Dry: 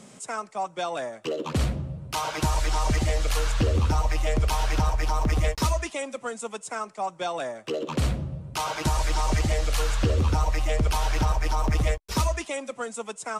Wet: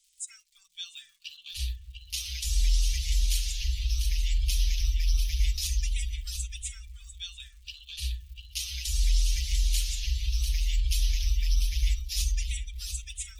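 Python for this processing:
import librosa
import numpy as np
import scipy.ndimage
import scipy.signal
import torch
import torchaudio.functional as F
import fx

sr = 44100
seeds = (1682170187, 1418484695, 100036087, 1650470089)

p1 = fx.dmg_crackle(x, sr, seeds[0], per_s=120.0, level_db=-34.0)
p2 = scipy.signal.sosfilt(scipy.signal.cheby2(4, 70, [200.0, 860.0], 'bandstop', fs=sr, output='sos'), p1)
p3 = p2 + 0.7 * np.pad(p2, (int(5.1 * sr / 1000.0), 0))[:len(p2)]
p4 = p3 + fx.echo_single(p3, sr, ms=695, db=-6.5, dry=0)
p5 = fx.noise_reduce_blind(p4, sr, reduce_db=15)
y = fx.echo_wet_lowpass(p5, sr, ms=257, feedback_pct=71, hz=950.0, wet_db=-10.5)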